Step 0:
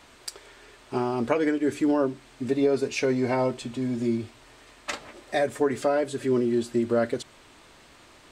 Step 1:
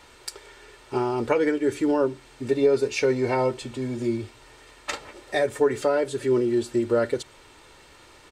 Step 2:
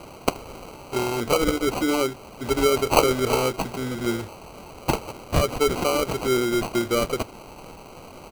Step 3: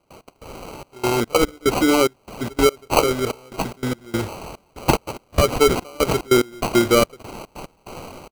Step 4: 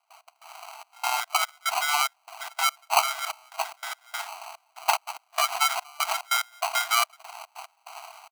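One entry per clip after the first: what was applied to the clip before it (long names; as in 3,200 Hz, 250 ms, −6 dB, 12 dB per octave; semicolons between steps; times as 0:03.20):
comb filter 2.2 ms, depth 42%; level +1 dB
high shelf with overshoot 1,700 Hz +11.5 dB, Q 1.5; decimation without filtering 25×
automatic gain control gain up to 9 dB; gate pattern ".x..xxxx..xx" 145 BPM −24 dB; level −1 dB
in parallel at −10 dB: bit reduction 5 bits; on the sum: linear-phase brick-wall high-pass 640 Hz; level −4 dB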